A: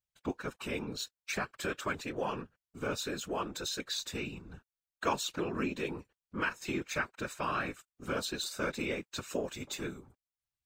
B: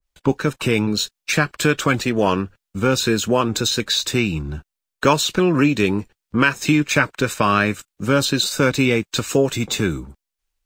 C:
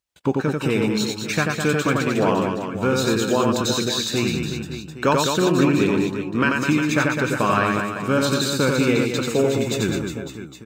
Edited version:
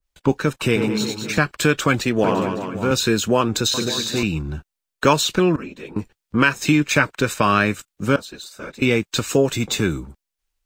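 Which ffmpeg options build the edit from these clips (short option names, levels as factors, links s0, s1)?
-filter_complex "[2:a]asplit=3[s0][s1][s2];[0:a]asplit=2[s3][s4];[1:a]asplit=6[s5][s6][s7][s8][s9][s10];[s5]atrim=end=0.762[s11];[s0]atrim=start=0.758:end=1.382[s12];[s6]atrim=start=1.378:end=2.242[s13];[s1]atrim=start=2.238:end=2.912[s14];[s7]atrim=start=2.908:end=3.742[s15];[s2]atrim=start=3.738:end=4.232[s16];[s8]atrim=start=4.228:end=5.562[s17];[s3]atrim=start=5.558:end=5.962[s18];[s9]atrim=start=5.958:end=8.162[s19];[s4]atrim=start=8.158:end=8.822[s20];[s10]atrim=start=8.818[s21];[s11][s12]acrossfade=d=0.004:c1=hsin:c2=hsin[s22];[s22][s13]acrossfade=d=0.004:c1=hsin:c2=hsin[s23];[s23][s14]acrossfade=d=0.004:c1=hsin:c2=hsin[s24];[s24][s15]acrossfade=d=0.004:c1=hsin:c2=hsin[s25];[s25][s16]acrossfade=d=0.004:c1=hsin:c2=hsin[s26];[s26][s17]acrossfade=d=0.004:c1=hsin:c2=hsin[s27];[s27][s18]acrossfade=d=0.004:c1=hsin:c2=hsin[s28];[s28][s19]acrossfade=d=0.004:c1=hsin:c2=hsin[s29];[s29][s20]acrossfade=d=0.004:c1=hsin:c2=hsin[s30];[s30][s21]acrossfade=d=0.004:c1=hsin:c2=hsin"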